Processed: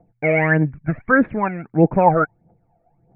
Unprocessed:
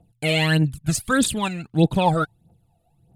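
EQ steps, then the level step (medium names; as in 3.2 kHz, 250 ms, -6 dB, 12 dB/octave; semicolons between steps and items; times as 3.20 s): rippled Chebyshev low-pass 2.3 kHz, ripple 3 dB; distance through air 120 m; peaking EQ 69 Hz -10.5 dB 2.4 oct; +8.0 dB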